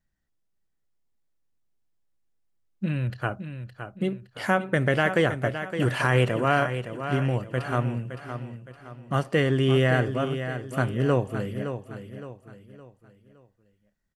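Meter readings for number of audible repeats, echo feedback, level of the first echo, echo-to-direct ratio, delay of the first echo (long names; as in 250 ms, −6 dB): 4, 39%, −9.5 dB, −9.0 dB, 565 ms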